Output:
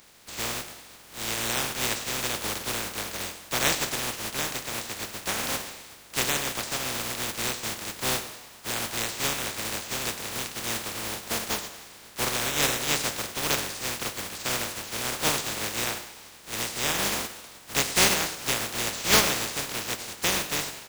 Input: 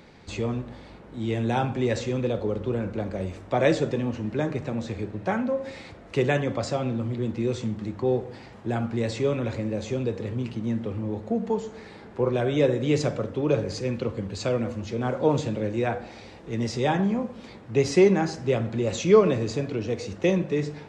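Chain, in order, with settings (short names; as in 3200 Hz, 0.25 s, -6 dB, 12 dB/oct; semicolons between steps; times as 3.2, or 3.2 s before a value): spectral contrast lowered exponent 0.17; frequency-shifting echo 98 ms, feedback 57%, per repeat +120 Hz, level -15 dB; gain -3.5 dB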